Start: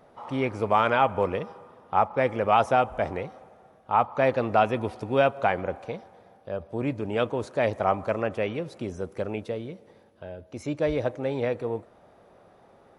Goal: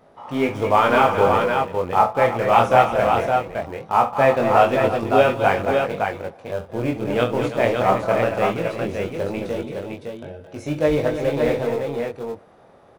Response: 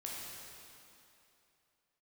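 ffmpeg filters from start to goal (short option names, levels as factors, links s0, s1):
-filter_complex "[0:a]asplit=2[s0][s1];[s1]aeval=exprs='val(0)*gte(abs(val(0)),0.0501)':c=same,volume=0.316[s2];[s0][s2]amix=inputs=2:normalize=0,flanger=delay=19.5:depth=5.7:speed=0.19,aecho=1:1:42|68|218|224|332|562:0.266|0.158|0.266|0.316|0.237|0.596,volume=1.88"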